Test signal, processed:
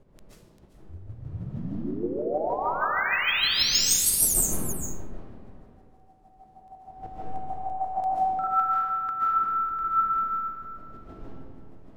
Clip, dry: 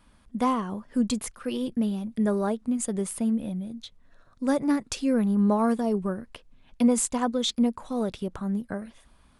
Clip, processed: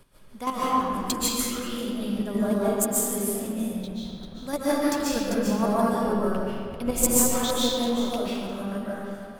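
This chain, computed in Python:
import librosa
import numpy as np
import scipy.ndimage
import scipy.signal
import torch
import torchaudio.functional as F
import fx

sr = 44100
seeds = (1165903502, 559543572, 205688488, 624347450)

p1 = fx.dmg_wind(x, sr, seeds[0], corner_hz=210.0, level_db=-42.0)
p2 = fx.high_shelf(p1, sr, hz=4900.0, db=11.5)
p3 = p2 + fx.echo_single(p2, sr, ms=394, db=-13.0, dry=0)
p4 = fx.chopper(p3, sr, hz=6.4, depth_pct=60, duty_pct=20)
p5 = fx.peak_eq(p4, sr, hz=120.0, db=-7.5, octaves=2.7)
p6 = fx.rev_freeverb(p5, sr, rt60_s=2.1, hf_ratio=0.65, predelay_ms=100, drr_db=-8.0)
y = np.interp(np.arange(len(p6)), np.arange(len(p6))[::2], p6[::2])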